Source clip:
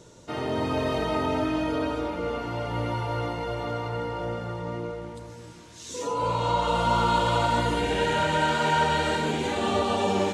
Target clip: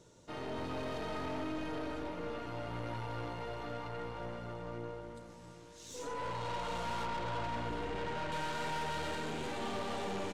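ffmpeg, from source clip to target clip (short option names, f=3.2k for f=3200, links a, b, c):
-filter_complex "[0:a]asettb=1/sr,asplit=3[a][b][c];[a]atrim=end=7.054[d];[b]atrim=start=7.05:end=8.32,asetpts=PTS-STARTPTS,afade=t=in:d=0.004:c=qsin,afade=t=out:st=1.266:d=0.004:c=qsin,lowpass=f=1.9k:p=1[e];[c]atrim=start=8.316[f];[d][e]acrossfade=d=0.004:c1=hsin:c2=qsin[g];[g][f]acrossfade=d=0.004:c1=qsin:c2=hsin,aeval=exprs='(tanh(25.1*val(0)+0.6)-tanh(0.6))/25.1':c=same,asplit=2[h][i];[i]aecho=0:1:815:0.224[j];[h][j]amix=inputs=2:normalize=0,volume=-7.5dB"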